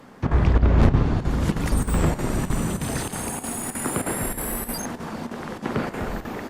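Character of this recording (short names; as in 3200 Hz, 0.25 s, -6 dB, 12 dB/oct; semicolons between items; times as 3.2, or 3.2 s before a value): chopped level 3.2 Hz, depth 65%, duty 85%; Opus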